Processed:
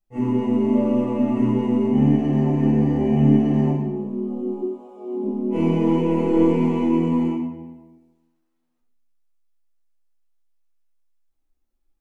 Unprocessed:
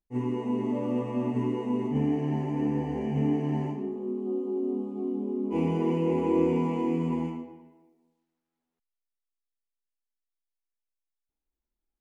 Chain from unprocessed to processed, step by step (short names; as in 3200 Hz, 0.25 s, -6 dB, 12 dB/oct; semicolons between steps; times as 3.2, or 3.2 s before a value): tracing distortion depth 0.041 ms; 4.59–5.22 HPF 1000 Hz -> 240 Hz 24 dB/oct; shoebox room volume 550 m³, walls furnished, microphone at 6.6 m; gain -3 dB